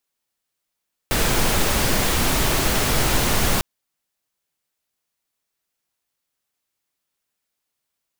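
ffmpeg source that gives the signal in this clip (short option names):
-f lavfi -i "anoisesrc=c=pink:a=0.575:d=2.5:r=44100:seed=1"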